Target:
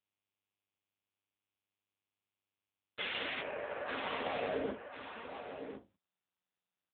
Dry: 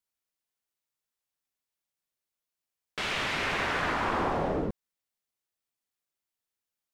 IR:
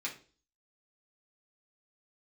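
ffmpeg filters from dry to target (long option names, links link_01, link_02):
-filter_complex "[0:a]dynaudnorm=framelen=410:gausssize=3:maxgain=10dB,alimiter=limit=-21.5dB:level=0:latency=1:release=15,acrusher=bits=7:mix=0:aa=0.000001,aeval=exprs='(tanh(70.8*val(0)+0.35)-tanh(0.35))/70.8':channel_layout=same,asplit=3[link_01][link_02][link_03];[link_01]afade=type=out:start_time=3.4:duration=0.02[link_04];[link_02]highpass=frequency=270:width=0.5412,highpass=frequency=270:width=1.3066,equalizer=frequency=280:width_type=q:width=4:gain=-10,equalizer=frequency=570:width_type=q:width=4:gain=5,equalizer=frequency=940:width_type=q:width=4:gain=-5,equalizer=frequency=1400:width_type=q:width=4:gain=-8,equalizer=frequency=2000:width_type=q:width=4:gain=-10,lowpass=frequency=2100:width=0.5412,lowpass=frequency=2100:width=1.3066,afade=type=in:start_time=3.4:duration=0.02,afade=type=out:start_time=3.86:duration=0.02[link_05];[link_03]afade=type=in:start_time=3.86:duration=0.02[link_06];[link_04][link_05][link_06]amix=inputs=3:normalize=0,aecho=1:1:1048:0.376[link_07];[1:a]atrim=start_sample=2205,asetrate=79380,aresample=44100[link_08];[link_07][link_08]afir=irnorm=-1:irlink=0,volume=10.5dB" -ar 8000 -c:a libopencore_amrnb -b:a 5900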